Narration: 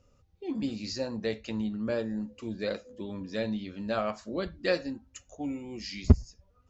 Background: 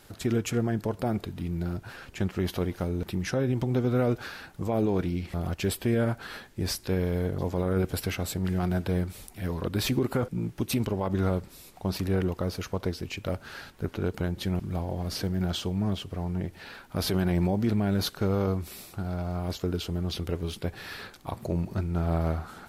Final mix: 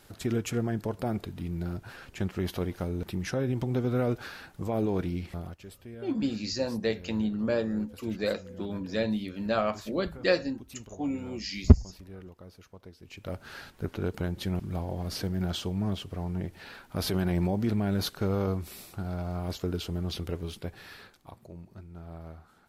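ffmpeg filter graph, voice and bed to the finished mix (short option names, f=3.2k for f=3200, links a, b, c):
-filter_complex "[0:a]adelay=5600,volume=3dB[a];[1:a]volume=14.5dB,afade=t=out:st=5.24:d=0.36:silence=0.149624,afade=t=in:st=12.99:d=0.53:silence=0.141254,afade=t=out:st=20.12:d=1.36:silence=0.177828[b];[a][b]amix=inputs=2:normalize=0"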